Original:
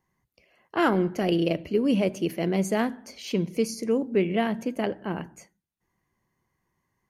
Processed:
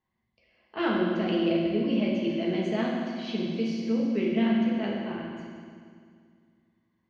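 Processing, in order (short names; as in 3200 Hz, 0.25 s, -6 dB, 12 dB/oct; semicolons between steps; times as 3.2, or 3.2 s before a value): ladder low-pass 4500 Hz, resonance 40%; reverb RT60 2.1 s, pre-delay 5 ms, DRR -4 dB; gain -1.5 dB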